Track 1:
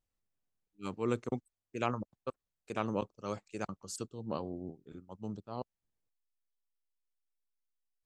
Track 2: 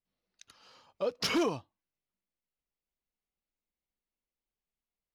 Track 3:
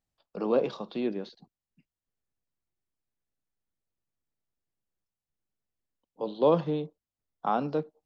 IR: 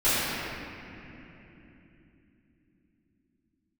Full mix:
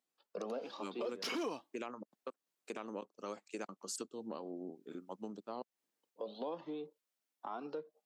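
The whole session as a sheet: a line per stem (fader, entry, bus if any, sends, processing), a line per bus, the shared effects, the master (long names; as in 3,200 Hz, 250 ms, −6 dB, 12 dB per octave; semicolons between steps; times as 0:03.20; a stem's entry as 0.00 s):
−3.0 dB, 0.00 s, bus A, no send, automatic gain control gain up to 8 dB
−3.0 dB, 0.00 s, no bus, no send, downward expander −59 dBFS
+2.5 dB, 0.00 s, bus A, no send, flanger whose copies keep moving one way rising 1.2 Hz
bus A: 0.0 dB, downward compressor 12 to 1, threshold −37 dBFS, peak gain reduction 17 dB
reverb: not used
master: high-pass filter 230 Hz 24 dB per octave; brickwall limiter −30.5 dBFS, peak gain reduction 9 dB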